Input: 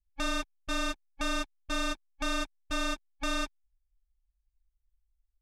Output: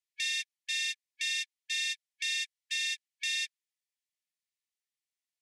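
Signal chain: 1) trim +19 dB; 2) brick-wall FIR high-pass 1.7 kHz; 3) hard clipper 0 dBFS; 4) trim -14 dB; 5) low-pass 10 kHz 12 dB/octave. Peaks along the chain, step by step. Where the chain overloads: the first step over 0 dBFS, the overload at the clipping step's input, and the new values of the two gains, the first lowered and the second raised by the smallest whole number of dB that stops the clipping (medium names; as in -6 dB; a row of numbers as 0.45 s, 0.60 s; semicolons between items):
-3.5 dBFS, -5.5 dBFS, -5.5 dBFS, -19.5 dBFS, -20.5 dBFS; nothing clips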